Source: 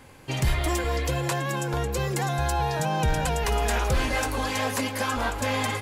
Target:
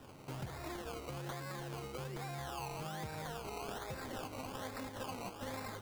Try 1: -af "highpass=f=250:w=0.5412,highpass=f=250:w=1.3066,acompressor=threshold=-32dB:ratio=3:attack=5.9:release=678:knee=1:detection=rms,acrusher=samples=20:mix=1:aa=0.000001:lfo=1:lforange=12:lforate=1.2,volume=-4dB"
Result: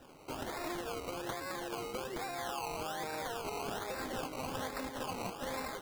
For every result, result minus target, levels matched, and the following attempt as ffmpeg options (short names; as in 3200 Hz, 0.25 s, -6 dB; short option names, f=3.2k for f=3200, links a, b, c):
125 Hz band -9.5 dB; compressor: peak gain reduction -5.5 dB
-af "highpass=f=92:w=0.5412,highpass=f=92:w=1.3066,acompressor=threshold=-32dB:ratio=3:attack=5.9:release=678:knee=1:detection=rms,acrusher=samples=20:mix=1:aa=0.000001:lfo=1:lforange=12:lforate=1.2,volume=-4dB"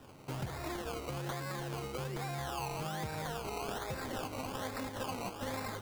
compressor: peak gain reduction -4.5 dB
-af "highpass=f=92:w=0.5412,highpass=f=92:w=1.3066,acompressor=threshold=-38.5dB:ratio=3:attack=5.9:release=678:knee=1:detection=rms,acrusher=samples=20:mix=1:aa=0.000001:lfo=1:lforange=12:lforate=1.2,volume=-4dB"